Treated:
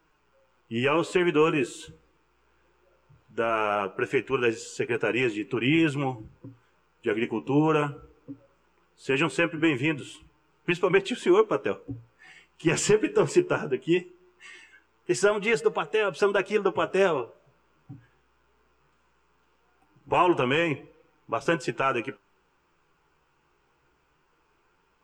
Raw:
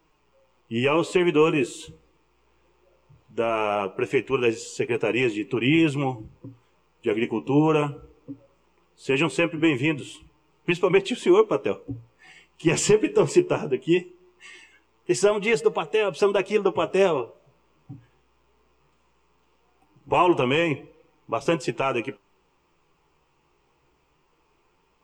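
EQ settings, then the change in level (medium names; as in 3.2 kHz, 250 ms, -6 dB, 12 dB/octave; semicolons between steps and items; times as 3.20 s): peaking EQ 1.5 kHz +12 dB 0.34 oct; -3.0 dB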